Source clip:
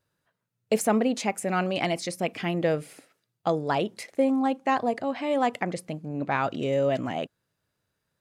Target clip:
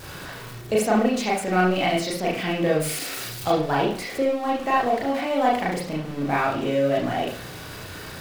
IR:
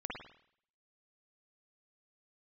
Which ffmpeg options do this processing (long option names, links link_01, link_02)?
-filter_complex "[0:a]aeval=exprs='val(0)+0.5*0.0237*sgn(val(0))':channel_layout=same,asettb=1/sr,asplit=3[link_01][link_02][link_03];[link_01]atrim=end=2.804[link_04];[link_02]atrim=start=2.8:end=3.52,asetpts=PTS-STARTPTS,afade=type=in:duration=0.004:curve=qsin,afade=type=out:start_time=0.716:duration=0.004:curve=qsin,highshelf=frequency=3000:gain=11.5[link_05];[link_03]atrim=start=3.516[link_06];[link_04][link_05]acrossfade=duration=0.004:curve1=hsin:curve2=qsin[link_07];[link_07][link_06]acrossfade=duration=0.004:curve1=qsin:curve2=hsin[link_08];[1:a]atrim=start_sample=2205,asetrate=66150,aresample=44100[link_09];[link_08][link_09]afir=irnorm=-1:irlink=0,volume=5.5dB"